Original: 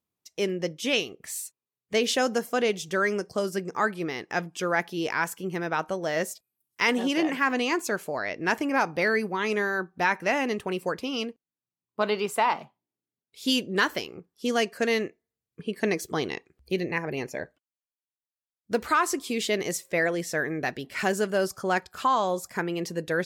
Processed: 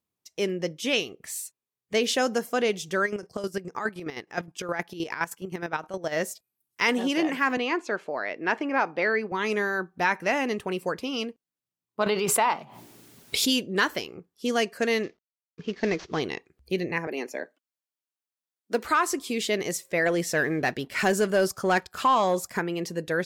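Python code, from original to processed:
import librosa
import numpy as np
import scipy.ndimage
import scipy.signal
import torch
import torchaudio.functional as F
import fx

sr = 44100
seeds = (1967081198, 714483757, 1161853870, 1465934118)

y = fx.chopper(x, sr, hz=9.6, depth_pct=65, duty_pct=35, at=(3.05, 6.11), fade=0.02)
y = fx.bandpass_edges(y, sr, low_hz=250.0, high_hz=3500.0, at=(7.57, 9.32))
y = fx.pre_swell(y, sr, db_per_s=34.0, at=(12.06, 13.65))
y = fx.cvsd(y, sr, bps=32000, at=(15.03, 16.2))
y = fx.steep_highpass(y, sr, hz=220.0, slope=36, at=(17.07, 18.85))
y = fx.leveller(y, sr, passes=1, at=(20.06, 22.59))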